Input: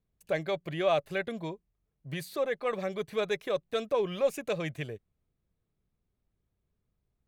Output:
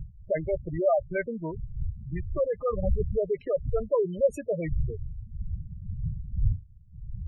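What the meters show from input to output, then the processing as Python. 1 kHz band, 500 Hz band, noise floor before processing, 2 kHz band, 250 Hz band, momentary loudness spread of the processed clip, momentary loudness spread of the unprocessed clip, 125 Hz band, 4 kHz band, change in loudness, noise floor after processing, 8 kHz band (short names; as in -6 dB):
-1.0 dB, +3.5 dB, -82 dBFS, -4.0 dB, +3.0 dB, 12 LU, 12 LU, +10.5 dB, under -25 dB, +2.0 dB, -50 dBFS, n/a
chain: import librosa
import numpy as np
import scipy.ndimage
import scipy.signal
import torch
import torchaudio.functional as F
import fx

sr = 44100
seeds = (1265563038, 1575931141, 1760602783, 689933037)

y = fx.dmg_wind(x, sr, seeds[0], corner_hz=93.0, level_db=-36.0)
y = fx.spec_gate(y, sr, threshold_db=-10, keep='strong')
y = y * librosa.db_to_amplitude(4.0)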